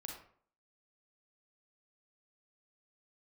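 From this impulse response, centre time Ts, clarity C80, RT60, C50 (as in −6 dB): 35 ms, 8.0 dB, 0.55 s, 3.5 dB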